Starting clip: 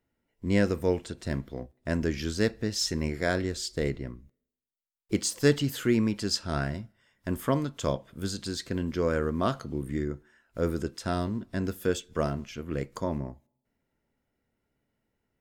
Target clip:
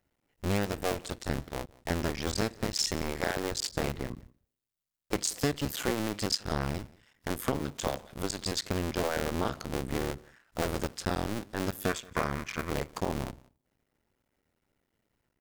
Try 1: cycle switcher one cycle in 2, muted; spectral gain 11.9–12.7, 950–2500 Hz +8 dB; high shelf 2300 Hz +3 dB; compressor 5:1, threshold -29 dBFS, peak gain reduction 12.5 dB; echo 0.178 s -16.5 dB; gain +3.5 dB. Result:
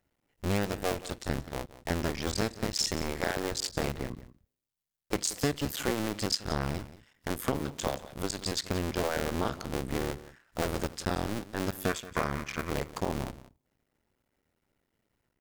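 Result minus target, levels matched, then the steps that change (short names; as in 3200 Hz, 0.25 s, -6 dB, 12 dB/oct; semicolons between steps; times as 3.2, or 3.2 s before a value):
echo-to-direct +7.5 dB
change: echo 0.178 s -24 dB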